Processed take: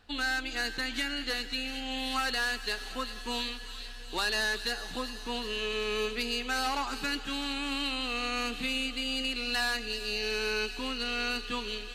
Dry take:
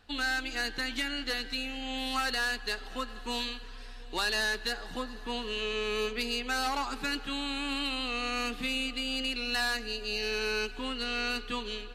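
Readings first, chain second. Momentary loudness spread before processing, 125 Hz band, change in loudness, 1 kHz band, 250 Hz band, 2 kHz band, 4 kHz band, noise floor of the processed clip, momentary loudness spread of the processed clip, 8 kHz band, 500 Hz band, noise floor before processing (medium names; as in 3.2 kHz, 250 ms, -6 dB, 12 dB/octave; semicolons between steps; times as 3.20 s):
7 LU, 0.0 dB, +0.5 dB, 0.0 dB, 0.0 dB, +0.5 dB, +1.0 dB, -42 dBFS, 6 LU, +1.0 dB, 0.0 dB, -43 dBFS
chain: feedback echo behind a high-pass 377 ms, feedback 74%, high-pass 2.5 kHz, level -9.5 dB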